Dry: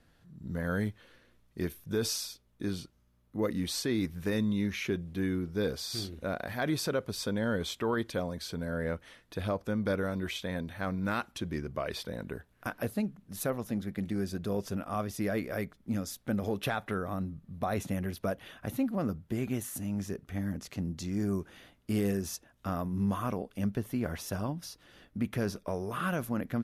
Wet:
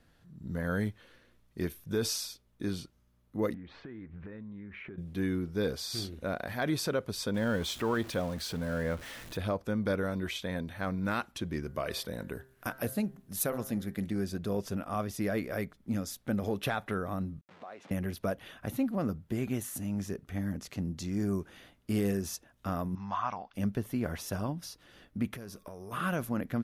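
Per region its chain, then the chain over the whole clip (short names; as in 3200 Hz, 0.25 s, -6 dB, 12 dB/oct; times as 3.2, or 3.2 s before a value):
3.54–4.98 LPF 2300 Hz 24 dB/oct + compressor 12:1, threshold -41 dBFS + Doppler distortion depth 0.1 ms
7.34–9.37 zero-crossing step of -41.5 dBFS + bell 410 Hz -3 dB 0.27 oct
11.62–14.06 de-hum 131.8 Hz, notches 15 + de-esser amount 25% + high shelf 6900 Hz +9 dB
17.41–17.91 level-crossing sampler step -44 dBFS + compressor 10:1, threshold -39 dBFS + BPF 400–3400 Hz
22.95–23.54 steep low-pass 6100 Hz 72 dB/oct + resonant low shelf 600 Hz -11 dB, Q 3
25.34–25.91 high shelf 8500 Hz +11 dB + compressor, threshold -41 dBFS + whine 1100 Hz -71 dBFS
whole clip: dry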